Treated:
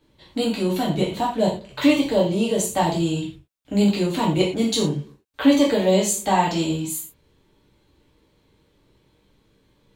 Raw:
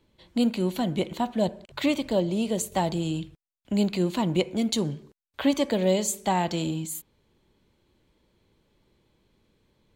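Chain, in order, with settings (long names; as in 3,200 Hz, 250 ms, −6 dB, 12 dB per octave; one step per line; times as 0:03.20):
reverb whose tail is shaped and stops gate 140 ms falling, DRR −5 dB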